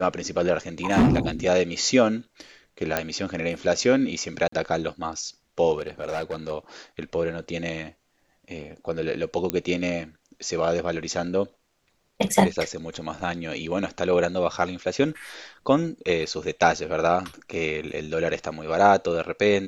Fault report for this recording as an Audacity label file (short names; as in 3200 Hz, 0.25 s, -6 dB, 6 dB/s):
0.900000	1.180000	clipped -13.5 dBFS
2.970000	2.970000	pop -7 dBFS
4.480000	4.520000	gap 44 ms
5.780000	6.510000	clipped -24 dBFS
9.500000	9.500000	pop -8 dBFS
17.530000	17.530000	gap 2.4 ms